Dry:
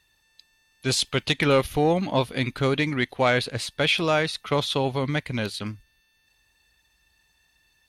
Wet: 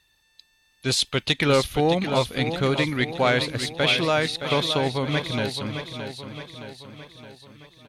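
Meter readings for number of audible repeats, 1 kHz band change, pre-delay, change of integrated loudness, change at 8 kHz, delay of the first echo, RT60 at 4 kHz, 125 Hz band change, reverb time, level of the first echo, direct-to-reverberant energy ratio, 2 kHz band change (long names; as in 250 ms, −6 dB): 5, +0.5 dB, no reverb audible, +1.0 dB, +1.0 dB, 618 ms, no reverb audible, +1.0 dB, no reverb audible, −9.0 dB, no reverb audible, +1.0 dB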